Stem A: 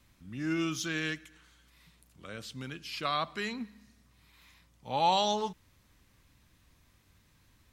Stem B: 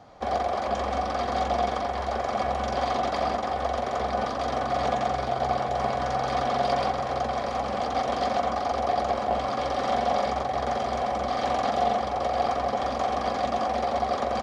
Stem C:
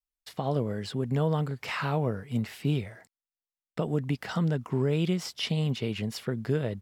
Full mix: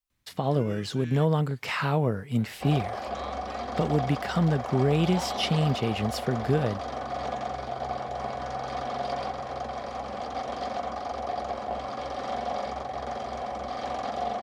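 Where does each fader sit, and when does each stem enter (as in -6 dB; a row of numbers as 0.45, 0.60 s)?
-12.0, -6.5, +3.0 dB; 0.10, 2.40, 0.00 s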